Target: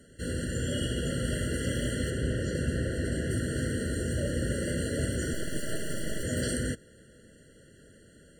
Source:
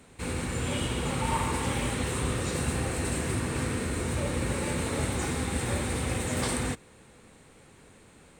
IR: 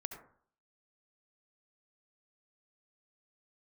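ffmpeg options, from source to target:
-filter_complex "[0:a]asettb=1/sr,asplit=3[a][b][c];[a]atrim=end=2.104[d];[b]atrim=start=2.1:end=3.31,asetpts=PTS-STARTPTS,afade=t=in:d=0.004:c=qsin,afade=t=out:st=1.206:d=0.004:c=qsin,aemphasis=mode=reproduction:type=cd[e];[c]atrim=start=3.306[f];[d][e]acrossfade=d=0.004:c1=hsin:c2=qsin[g];[g][f]acrossfade=d=0.004:c1=qsin:c2=hsin,asettb=1/sr,asplit=3[h][i][j];[h]atrim=end=5.334[k];[i]atrim=start=5.33:end=6.23,asetpts=PTS-STARTPTS,afade=t=in:d=0.004:c=qsin,afade=t=out:st=0.896:d=0.004:c=qsin,aeval=exprs='abs(val(0))':c=same[l];[j]atrim=start=6.226[m];[k][l]acrossfade=d=0.004:c1=hsin:c2=qsin[n];[n][m]acrossfade=d=0.004:c1=qsin:c2=hsin,afftfilt=real='re*eq(mod(floor(b*sr/1024/680),2),0)':imag='im*eq(mod(floor(b*sr/1024/680),2),0)':win_size=1024:overlap=0.75"

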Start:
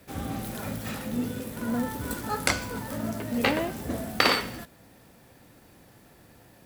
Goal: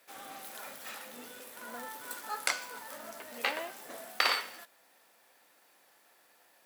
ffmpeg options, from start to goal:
-af "highpass=740,volume=-5dB"

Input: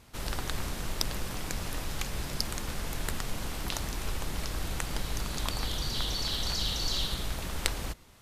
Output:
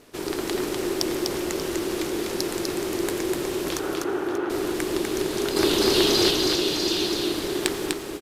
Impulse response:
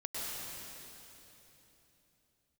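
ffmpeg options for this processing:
-filter_complex "[0:a]asettb=1/sr,asplit=3[a][b][c];[a]atrim=end=5.564[d];[b]atrim=start=5.56:end=6.31,asetpts=PTS-STARTPTS,afade=t=in:d=0.004:c=qsin,afade=t=out:st=0.746:d=0.004:c=qsin,acontrast=72[e];[c]atrim=start=6.306[f];[d][e]acrossfade=d=0.004:c1=hsin:c2=qsin[g];[g][f]acrossfade=d=0.004:c1=qsin:c2=hsin,asoftclip=type=tanh:threshold=-9dB,aeval=exprs='val(0)*sin(2*PI*360*n/s)':c=same,asettb=1/sr,asplit=3[h][i][j];[h]atrim=end=3.794[k];[i]atrim=start=3.79:end=4.5,asetpts=PTS-STARTPTS,afade=t=in:d=0.004:c=qsin,afade=t=out:st=0.706:d=0.004:c=qsin,highpass=120,equalizer=f=190:t=q:w=4:g=-10,equalizer=f=800:t=q:w=4:g=5,equalizer=f=1.4k:t=q:w=4:g=9,equalizer=f=2.2k:t=q:w=4:g=-7,lowpass=f=2.6k:w=0.5412,lowpass=f=2.6k:w=1.3066[l];[j]atrim=start=4.496[m];[k][l]acrossfade=d=0.004:c1=hsin:c2=qsin[n];[n][m]acrossfade=d=0.004:c1=qsin:c2=hsin,aecho=1:1:248|585:0.668|0.224,asplit=2[o][p];[1:a]atrim=start_sample=2205,asetrate=57330,aresample=44100[q];[p][q]afir=irnorm=-1:irlink=0,volume=-15dB[r];[o][r]amix=inputs=2:normalize=0,volume=6dB"

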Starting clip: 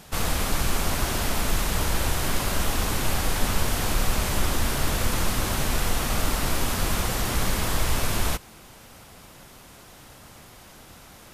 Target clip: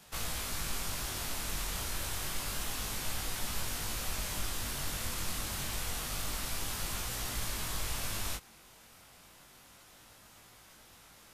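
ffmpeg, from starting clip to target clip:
-filter_complex "[0:a]acrossover=split=190|3000[a][b][c];[b]acompressor=threshold=-31dB:ratio=6[d];[a][d][c]amix=inputs=3:normalize=0,tiltshelf=f=890:g=-3.5,flanger=delay=18:depth=4.3:speed=0.28,volume=-7.5dB"

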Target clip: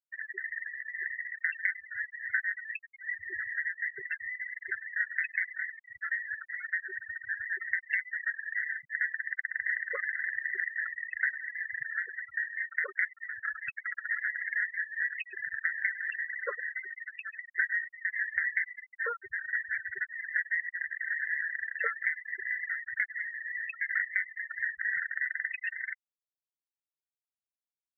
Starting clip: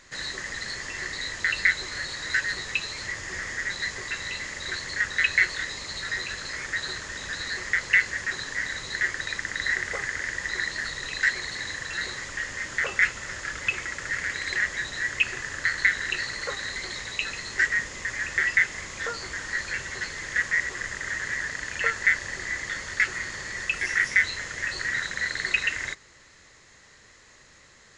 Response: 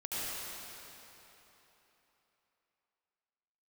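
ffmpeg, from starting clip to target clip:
-filter_complex "[0:a]aeval=exprs='0.562*(cos(1*acos(clip(val(0)/0.562,-1,1)))-cos(1*PI/2))+0.00794*(cos(6*acos(clip(val(0)/0.562,-1,1)))-cos(6*PI/2))':c=same,lowpass=f=6.8k:w=0.5412,lowpass=f=6.8k:w=1.3066,acrusher=bits=5:mix=0:aa=0.000001,asplit=2[a][b];[b]adelay=100,highpass=300,lowpass=3.4k,asoftclip=type=hard:threshold=-15dB,volume=-16dB[c];[a][c]amix=inputs=2:normalize=0,acompressor=threshold=-27dB:ratio=4,highshelf=f=2.3k:t=q:w=1.5:g=-8,asplit=2[d][e];[1:a]atrim=start_sample=2205,atrim=end_sample=6615,adelay=104[f];[e][f]afir=irnorm=-1:irlink=0,volume=-14dB[g];[d][g]amix=inputs=2:normalize=0,afftfilt=real='re*gte(hypot(re,im),0.0708)':imag='im*gte(hypot(re,im),0.0708)':win_size=1024:overlap=0.75,highpass=200,adynamicequalizer=threshold=0.00794:dfrequency=3200:dqfactor=0.7:tfrequency=3200:tqfactor=0.7:attack=5:release=100:ratio=0.375:range=3:mode=cutabove:tftype=highshelf"

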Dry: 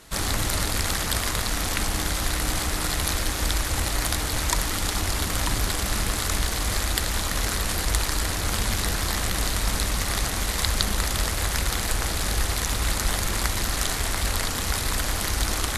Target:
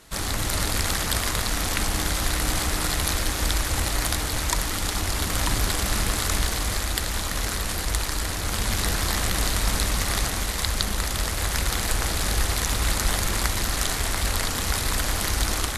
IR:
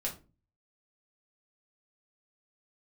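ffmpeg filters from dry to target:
-af "dynaudnorm=f=340:g=3:m=3.5dB,volume=-2dB"

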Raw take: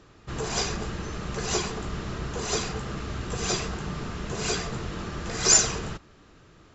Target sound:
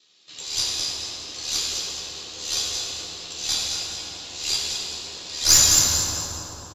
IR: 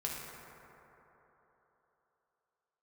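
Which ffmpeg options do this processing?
-filter_complex "[0:a]equalizer=f=4k:t=o:w=0.8:g=11,asplit=6[a][b][c][d][e][f];[b]adelay=215,afreqshift=63,volume=-5dB[g];[c]adelay=430,afreqshift=126,volume=-12.5dB[h];[d]adelay=645,afreqshift=189,volume=-20.1dB[i];[e]adelay=860,afreqshift=252,volume=-27.6dB[j];[f]adelay=1075,afreqshift=315,volume=-35.1dB[k];[a][g][h][i][j][k]amix=inputs=6:normalize=0,aexciter=amount=7.2:drive=3.3:freq=2.2k,highpass=280,aeval=exprs='val(0)*sin(2*PI*38*n/s)':c=same,flanger=delay=4.5:depth=5.8:regen=44:speed=0.61:shape=triangular,aeval=exprs='3.16*(cos(1*acos(clip(val(0)/3.16,-1,1)))-cos(1*PI/2))+0.316*(cos(6*acos(clip(val(0)/3.16,-1,1)))-cos(6*PI/2))':c=same[l];[1:a]atrim=start_sample=2205,asetrate=31311,aresample=44100[m];[l][m]afir=irnorm=-1:irlink=0,volume=-12dB"

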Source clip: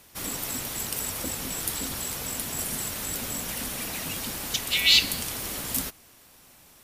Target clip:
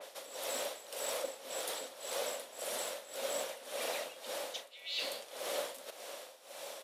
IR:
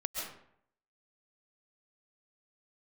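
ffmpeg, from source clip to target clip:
-filter_complex "[0:a]lowpass=11k,equalizer=f=3.6k:t=o:w=0.56:g=5.5,areverse,acompressor=threshold=-41dB:ratio=12,areverse,tremolo=f=1.8:d=0.84,asplit=2[a][b];[b]asoftclip=type=tanh:threshold=-40dB,volume=-2dB[c];[a][c]amix=inputs=2:normalize=0,highpass=f=550:t=q:w=6.3,asplit=2[d][e];[e]adelay=39,volume=-11.5dB[f];[d][f]amix=inputs=2:normalize=0,adynamicequalizer=threshold=0.002:dfrequency=2700:dqfactor=0.7:tfrequency=2700:tqfactor=0.7:attack=5:release=100:ratio=0.375:range=2.5:mode=cutabove:tftype=highshelf,volume=2.5dB"

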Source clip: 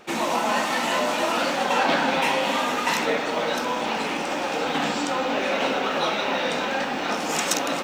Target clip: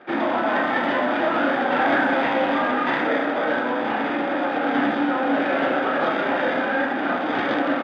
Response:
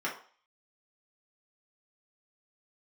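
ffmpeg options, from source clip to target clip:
-filter_complex "[0:a]aeval=exprs='0.141*(abs(mod(val(0)/0.141+3,4)-2)-1)':c=same,acrossover=split=2000[a][b];[a]asplit=2[c][d];[d]adelay=32,volume=-4.5dB[e];[c][e]amix=inputs=2:normalize=0[f];[b]acrusher=samples=32:mix=1:aa=0.000001[g];[f][g]amix=inputs=2:normalize=0,highpass=280,equalizer=f=280:t=q:w=4:g=7,equalizer=f=440:t=q:w=4:g=-6,equalizer=f=1k:t=q:w=4:g=-7,equalizer=f=1.6k:t=q:w=4:g=5,equalizer=f=3.6k:t=q:w=4:g=6,lowpass=f=3.8k:w=0.5412,lowpass=f=3.8k:w=1.3066,asplit=2[h][i];[i]adelay=80,highpass=300,lowpass=3.4k,asoftclip=type=hard:threshold=-20.5dB,volume=-16dB[j];[h][j]amix=inputs=2:normalize=0,volume=3.5dB"

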